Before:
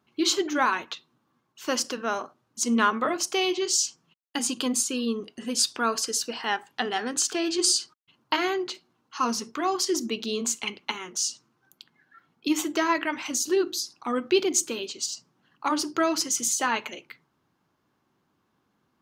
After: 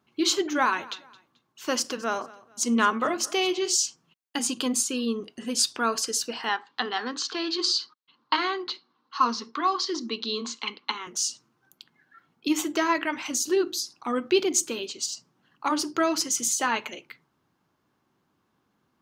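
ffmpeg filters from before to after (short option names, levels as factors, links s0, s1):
-filter_complex "[0:a]asettb=1/sr,asplit=3[s0][s1][s2];[s0]atrim=end=0.554[s3];[s1]atrim=start=0.55:end=3.75,asetpts=PTS-STARTPTS,afade=t=in:d=0.004:c=qsin,afade=t=out:st=3.196:d=0.004:c=qsin,aecho=1:1:218|436:0.0891|0.0294,atrim=end_sample=141120[s4];[s2]atrim=start=3.746[s5];[s3][s4]acrossfade=d=0.004:c1=hsin:c2=qsin[s6];[s6][s5]acrossfade=d=0.004:c1=qsin:c2=hsin,asettb=1/sr,asplit=3[s7][s8][s9];[s7]atrim=end=6.494[s10];[s8]atrim=start=6.49:end=11.07,asetpts=PTS-STARTPTS,afade=t=in:d=0.004:c=qsin,afade=t=out:st=4.576:d=0.004:c=qsin,highpass=f=180:w=0.5412,highpass=f=180:w=1.3066,equalizer=f=190:t=q:w=4:g=-6,equalizer=f=370:t=q:w=4:g=-5,equalizer=f=640:t=q:w=4:g=-8,equalizer=f=1100:t=q:w=4:g=7,equalizer=f=2500:t=q:w=4:g=-4,equalizer=f=4100:t=q:w=4:g=7,lowpass=f=5000:w=0.5412,lowpass=f=5000:w=1.3066[s11];[s9]atrim=start=11.066[s12];[s10][s11]acrossfade=d=0.004:c1=hsin:c2=qsin[s13];[s13][s12]acrossfade=d=0.004:c1=qsin:c2=hsin"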